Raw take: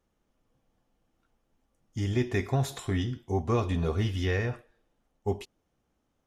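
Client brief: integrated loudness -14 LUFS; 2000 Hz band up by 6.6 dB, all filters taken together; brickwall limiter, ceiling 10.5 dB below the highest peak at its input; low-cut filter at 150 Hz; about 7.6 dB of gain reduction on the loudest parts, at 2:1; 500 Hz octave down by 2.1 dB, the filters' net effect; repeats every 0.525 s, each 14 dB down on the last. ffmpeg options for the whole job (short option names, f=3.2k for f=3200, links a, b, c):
-af "highpass=150,equalizer=f=500:t=o:g=-3,equalizer=f=2k:t=o:g=7.5,acompressor=threshold=-37dB:ratio=2,alimiter=level_in=7.5dB:limit=-24dB:level=0:latency=1,volume=-7.5dB,aecho=1:1:525|1050:0.2|0.0399,volume=29dB"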